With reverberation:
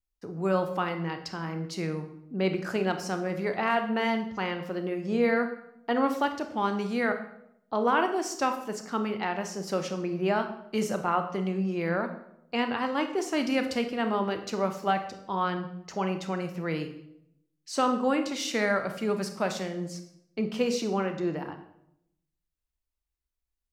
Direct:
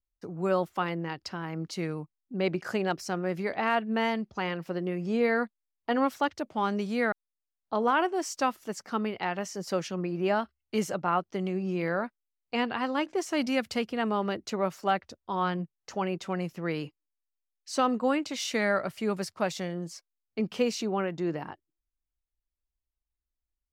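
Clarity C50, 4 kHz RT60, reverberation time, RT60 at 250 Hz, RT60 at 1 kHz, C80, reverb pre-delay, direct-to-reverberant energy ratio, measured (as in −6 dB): 10.0 dB, 0.60 s, 0.75 s, 1.0 s, 0.70 s, 12.5 dB, 24 ms, 6.5 dB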